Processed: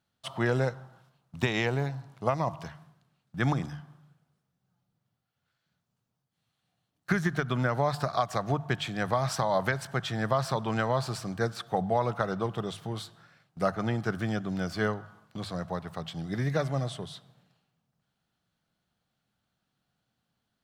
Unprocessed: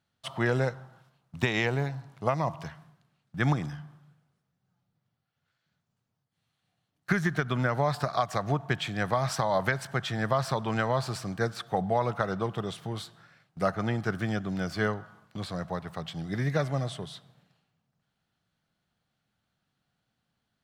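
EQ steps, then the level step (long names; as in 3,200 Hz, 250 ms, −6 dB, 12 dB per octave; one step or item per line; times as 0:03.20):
parametric band 2,000 Hz −2.5 dB
mains-hum notches 50/100/150 Hz
0.0 dB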